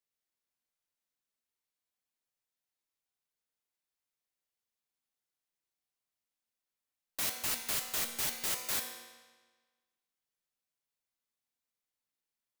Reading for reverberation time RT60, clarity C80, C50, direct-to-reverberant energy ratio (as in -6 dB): 1.4 s, 7.5 dB, 6.0 dB, 3.5 dB